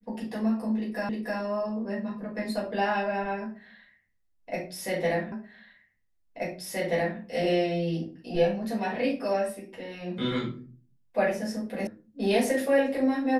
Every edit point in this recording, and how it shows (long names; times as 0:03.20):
0:01.09: the same again, the last 0.31 s
0:05.32: the same again, the last 1.88 s
0:11.87: cut off before it has died away